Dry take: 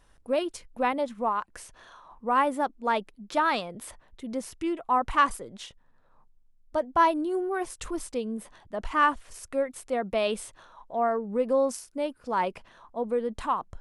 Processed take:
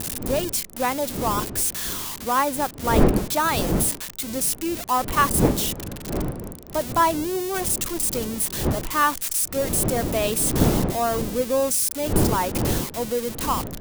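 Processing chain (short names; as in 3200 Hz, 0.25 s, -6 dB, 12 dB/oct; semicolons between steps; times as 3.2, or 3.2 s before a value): switching spikes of -20 dBFS; wind noise 320 Hz -29 dBFS; gain +2 dB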